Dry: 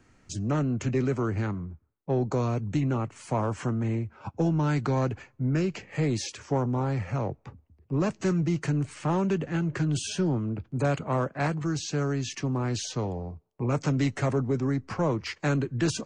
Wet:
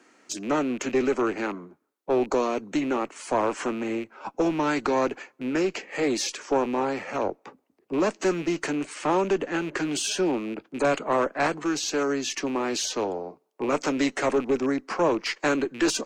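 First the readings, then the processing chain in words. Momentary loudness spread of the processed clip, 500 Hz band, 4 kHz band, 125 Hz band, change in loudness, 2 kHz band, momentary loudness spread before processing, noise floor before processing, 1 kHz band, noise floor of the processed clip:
7 LU, +5.5 dB, +6.5 dB, -15.0 dB, +2.0 dB, +6.5 dB, 6 LU, -65 dBFS, +6.0 dB, -69 dBFS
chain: rattling part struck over -27 dBFS, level -37 dBFS; HPF 280 Hz 24 dB/oct; tube stage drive 20 dB, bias 0.35; gain +7.5 dB

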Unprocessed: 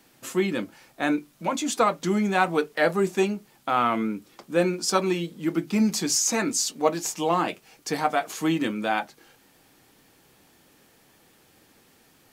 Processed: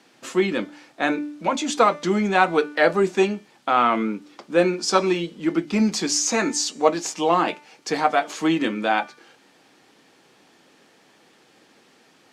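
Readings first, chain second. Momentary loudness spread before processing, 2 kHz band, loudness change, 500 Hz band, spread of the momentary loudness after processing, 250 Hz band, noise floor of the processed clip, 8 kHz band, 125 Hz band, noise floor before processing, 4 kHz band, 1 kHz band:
8 LU, +4.5 dB, +3.5 dB, +4.0 dB, 8 LU, +2.5 dB, -57 dBFS, +0.5 dB, 0.0 dB, -59 dBFS, +3.5 dB, +4.5 dB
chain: BPF 210–6100 Hz; de-hum 295.4 Hz, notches 39; gain +4.5 dB; Opus 96 kbps 48000 Hz

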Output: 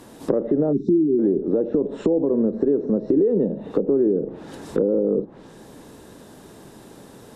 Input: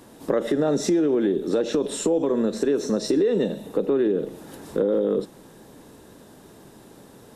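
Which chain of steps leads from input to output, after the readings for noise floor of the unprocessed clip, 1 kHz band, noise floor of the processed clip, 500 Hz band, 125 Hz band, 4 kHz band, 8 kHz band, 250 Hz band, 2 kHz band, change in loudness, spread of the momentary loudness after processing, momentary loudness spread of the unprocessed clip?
-49 dBFS, -4.0 dB, -46 dBFS, +1.5 dB, +3.5 dB, under -10 dB, under -15 dB, +3.0 dB, n/a, +2.0 dB, 7 LU, 7 LU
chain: spectral delete 0.73–1.19, 410–3500 Hz; treble ducked by the level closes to 520 Hz, closed at -21 dBFS; gain +3.5 dB

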